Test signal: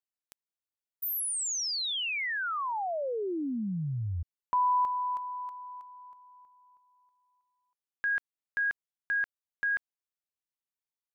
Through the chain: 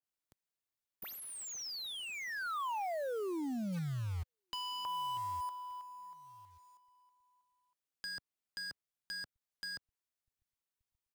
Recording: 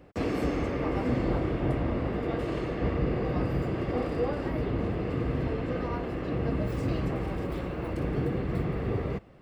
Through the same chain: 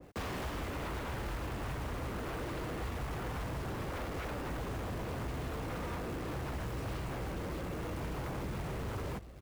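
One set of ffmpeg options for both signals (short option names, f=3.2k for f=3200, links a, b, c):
-filter_complex "[0:a]acrossover=split=110[a][b];[a]aecho=1:1:1175|2350:0.168|0.0353[c];[b]aeval=exprs='0.0266*(abs(mod(val(0)/0.0266+3,4)-2)-1)':c=same[d];[c][d]amix=inputs=2:normalize=0,acontrast=88,acrusher=bits=3:mode=log:mix=0:aa=0.000001,asoftclip=type=tanh:threshold=-18.5dB,acrossover=split=1400|4600[e][f][g];[e]acompressor=threshold=-28dB:ratio=4[h];[f]acompressor=threshold=-36dB:ratio=4[i];[g]acompressor=threshold=-41dB:ratio=4[j];[h][i][j]amix=inputs=3:normalize=0,adynamicequalizer=threshold=0.00398:dfrequency=1700:dqfactor=0.7:tfrequency=1700:tqfactor=0.7:attack=5:release=100:ratio=0.375:range=1.5:mode=cutabove:tftype=highshelf,volume=-8dB"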